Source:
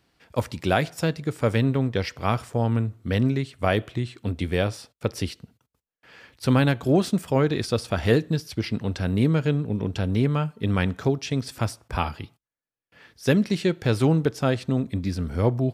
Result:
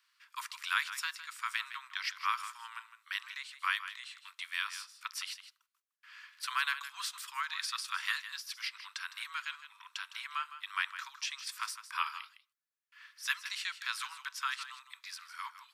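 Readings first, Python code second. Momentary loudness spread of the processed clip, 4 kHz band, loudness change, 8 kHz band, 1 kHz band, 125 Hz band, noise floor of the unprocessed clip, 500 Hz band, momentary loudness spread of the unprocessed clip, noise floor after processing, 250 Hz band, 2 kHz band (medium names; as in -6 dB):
13 LU, -3.0 dB, -13.0 dB, -3.0 dB, -7.0 dB, under -40 dB, under -85 dBFS, under -40 dB, 9 LU, -83 dBFS, under -40 dB, -3.0 dB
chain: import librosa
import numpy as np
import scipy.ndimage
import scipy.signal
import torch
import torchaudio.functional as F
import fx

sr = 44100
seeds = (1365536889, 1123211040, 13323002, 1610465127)

p1 = scipy.signal.sosfilt(scipy.signal.butter(16, 1000.0, 'highpass', fs=sr, output='sos'), x)
p2 = p1 + fx.echo_single(p1, sr, ms=159, db=-12.5, dry=0)
y = p2 * librosa.db_to_amplitude(-3.0)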